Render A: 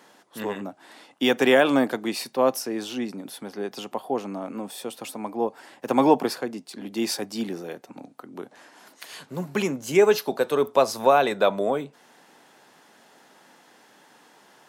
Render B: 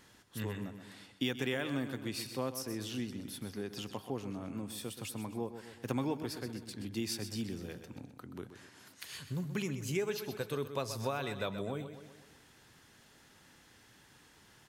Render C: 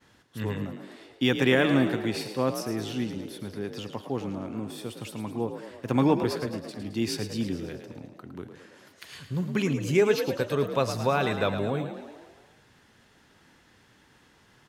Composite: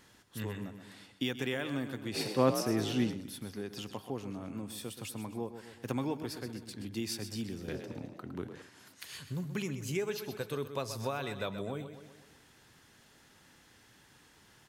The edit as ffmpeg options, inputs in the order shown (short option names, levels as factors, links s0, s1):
-filter_complex "[2:a]asplit=2[s0][s1];[1:a]asplit=3[s2][s3][s4];[s2]atrim=end=2.21[s5];[s0]atrim=start=2.11:end=3.19[s6];[s3]atrim=start=3.09:end=7.682[s7];[s1]atrim=start=7.678:end=8.622[s8];[s4]atrim=start=8.618[s9];[s5][s6]acrossfade=d=0.1:c1=tri:c2=tri[s10];[s10][s7]acrossfade=d=0.1:c1=tri:c2=tri[s11];[s11][s8]acrossfade=d=0.004:c1=hsin:c2=hsin[s12];[s12][s9]acrossfade=d=0.004:c1=hsin:c2=hsin"